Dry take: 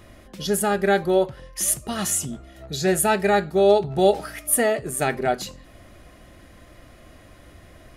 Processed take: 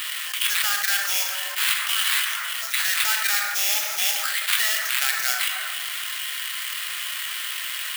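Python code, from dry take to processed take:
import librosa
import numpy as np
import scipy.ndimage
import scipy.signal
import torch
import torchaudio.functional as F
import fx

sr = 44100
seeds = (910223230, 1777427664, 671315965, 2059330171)

y = fx.peak_eq(x, sr, hz=3100.0, db=13.0, octaves=0.36)
y = fx.notch(y, sr, hz=2600.0, q=12.0)
y = fx.sample_hold(y, sr, seeds[0], rate_hz=6100.0, jitter_pct=20)
y = scipy.signal.sosfilt(scipy.signal.butter(4, 1400.0, 'highpass', fs=sr, output='sos'), y)
y = fx.high_shelf(y, sr, hz=11000.0, db=8.5)
y = fx.rev_plate(y, sr, seeds[1], rt60_s=1.2, hf_ratio=0.45, predelay_ms=0, drr_db=9.0)
y = fx.env_flatten(y, sr, amount_pct=70)
y = y * librosa.db_to_amplitude(-3.0)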